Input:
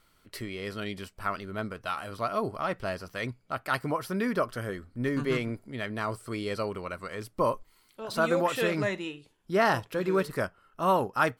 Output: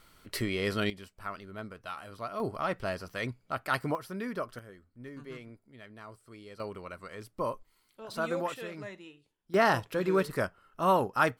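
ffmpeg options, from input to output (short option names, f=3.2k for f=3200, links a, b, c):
-af "asetnsamples=n=441:p=0,asendcmd='0.9 volume volume -7.5dB;2.4 volume volume -1dB;3.95 volume volume -7.5dB;4.59 volume volume -16dB;6.6 volume volume -6.5dB;8.54 volume volume -13.5dB;9.54 volume volume -0.5dB',volume=5.5dB"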